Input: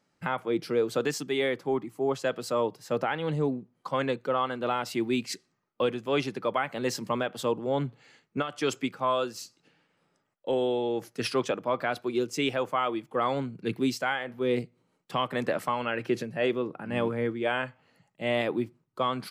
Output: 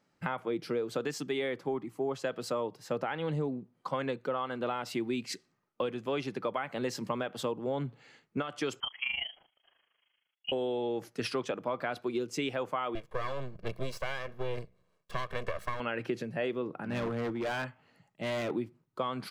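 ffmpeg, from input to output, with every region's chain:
-filter_complex "[0:a]asettb=1/sr,asplit=3[s0][s1][s2];[s0]atrim=end=8.804[s3];[s1]atrim=start=8.8:end=10.52,asetpts=PTS-STARTPTS,afade=t=in:d=0.004:c=qsin,afade=t=out:st=1.716:d=0.004:c=qsin,lowpass=f=2900:t=q:w=0.5098,lowpass=f=2900:t=q:w=0.6013,lowpass=f=2900:t=q:w=0.9,lowpass=f=2900:t=q:w=2.563,afreqshift=-3400,tremolo=f=26:d=0.75[s4];[s2]atrim=start=10.516[s5];[s3][s4]acrossfade=d=0.004:c1=hsin:c2=qsin[s6];[s6][s5]acrossfade=d=0.004:c1=qsin:c2=hsin,asettb=1/sr,asplit=3[s7][s8][s9];[s7]atrim=end=12.954[s10];[s8]atrim=start=12.95:end=15.8,asetpts=PTS-STARTPTS,afade=t=in:d=0.004:c=qsin,afade=t=out:st=2.846:d=0.004:c=qsin,bandreject=f=91.78:t=h:w=4,bandreject=f=183.56:t=h:w=4,aeval=exprs='max(val(0),0)':c=same,aecho=1:1:1.8:0.63,atrim=end_sample=125685[s11];[s9]atrim=start=15.796[s12];[s10][s11]acrossfade=d=0.004:c1=hsin:c2=qsin[s13];[s13][s12]acrossfade=d=0.004:c1=qsin:c2=hsin,asettb=1/sr,asplit=3[s14][s15][s16];[s14]atrim=end=16.834[s17];[s15]atrim=start=16.83:end=18.51,asetpts=PTS-STARTPTS,afade=t=in:d=0.004:c=qsin,afade=t=out:st=1.676:d=0.004:c=qsin,bandreject=f=510:w=11,asoftclip=type=hard:threshold=0.0335[s18];[s16]atrim=start=18.506[s19];[s17][s18]acrossfade=d=0.004:c1=hsin:c2=qsin[s20];[s20][s19]acrossfade=d=0.004:c1=qsin:c2=hsin,acompressor=threshold=0.0355:ratio=6,highshelf=f=5800:g=-5.5"

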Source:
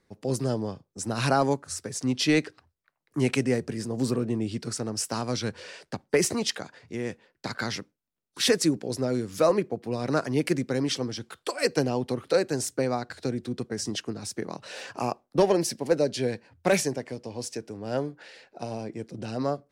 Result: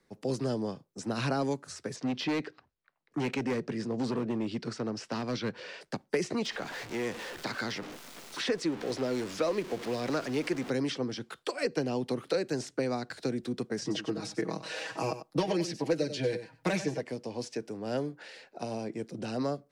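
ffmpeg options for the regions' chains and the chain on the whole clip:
-filter_complex "[0:a]asettb=1/sr,asplit=3[s0][s1][s2];[s0]atrim=end=1.964[s3];[s1]atrim=start=1.96:end=5.81,asetpts=PTS-STARTPTS,afade=t=in:d=0.004:c=qsin,afade=t=out:st=3.846:d=0.004:c=qsin,lowpass=4400,volume=14.1,asoftclip=hard,volume=0.0708[s4];[s2]atrim=start=5.806[s5];[s3][s4]acrossfade=d=0.004:c1=hsin:c2=qsin[s6];[s6][s5]acrossfade=d=0.004:c1=qsin:c2=hsin,asettb=1/sr,asplit=3[s7][s8][s9];[s7]atrim=end=6.454[s10];[s8]atrim=start=6.45:end=10.7,asetpts=PTS-STARTPTS,afade=t=in:d=0.004:c=qsin,afade=t=out:st=4.246:d=0.004:c=qsin,aeval=exprs='val(0)+0.5*0.0211*sgn(val(0))':c=same,equalizer=f=160:w=0.8:g=-7[s11];[s9]atrim=start=10.696[s12];[s10][s11]acrossfade=d=0.004:c1=hsin:c2=qsin[s13];[s13][s12]acrossfade=d=0.004:c1=qsin:c2=hsin,asettb=1/sr,asplit=3[s14][s15][s16];[s14]atrim=end=13.814[s17];[s15]atrim=start=13.81:end=17.01,asetpts=PTS-STARTPTS,afade=t=in:d=0.004:c=qsin,afade=t=out:st=3.196:d=0.004:c=qsin,aecho=1:1:6.3:0.96,atrim=end_sample=141120,aecho=1:1:94:0.211,atrim=end_sample=141120[s18];[s16]atrim=start=17.006[s19];[s17][s18]acrossfade=d=0.004:c1=hsin:c2=qsin[s20];[s20][s19]acrossfade=d=0.004:c1=qsin:c2=hsin,acrossover=split=7600[s21][s22];[s22]acompressor=threshold=0.002:ratio=4:attack=1:release=60[s23];[s21][s23]amix=inputs=2:normalize=0,equalizer=f=83:w=2.4:g=-12.5,acrossover=split=93|480|1900|4000[s24][s25][s26][s27][s28];[s24]acompressor=threshold=0.001:ratio=4[s29];[s25]acompressor=threshold=0.0355:ratio=4[s30];[s26]acompressor=threshold=0.0141:ratio=4[s31];[s27]acompressor=threshold=0.00891:ratio=4[s32];[s28]acompressor=threshold=0.00447:ratio=4[s33];[s29][s30][s31][s32][s33]amix=inputs=5:normalize=0"

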